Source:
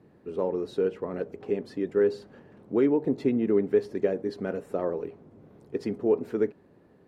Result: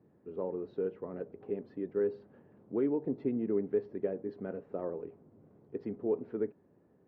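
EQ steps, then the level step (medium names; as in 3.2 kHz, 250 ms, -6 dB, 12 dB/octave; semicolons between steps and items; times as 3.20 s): high-pass 67 Hz; distance through air 250 m; treble shelf 2.2 kHz -10 dB; -7.0 dB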